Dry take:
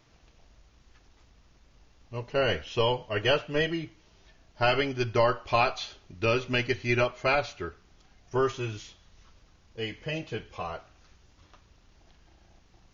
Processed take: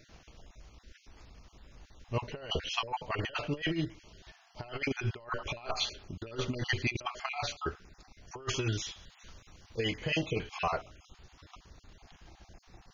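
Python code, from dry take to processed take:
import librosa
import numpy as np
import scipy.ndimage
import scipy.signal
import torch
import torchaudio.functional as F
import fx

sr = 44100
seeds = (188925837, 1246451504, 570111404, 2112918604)

y = fx.spec_dropout(x, sr, seeds[0], share_pct=27)
y = fx.high_shelf(y, sr, hz=2100.0, db=4.0, at=(8.42, 10.76))
y = fx.over_compress(y, sr, threshold_db=-33.0, ratio=-0.5)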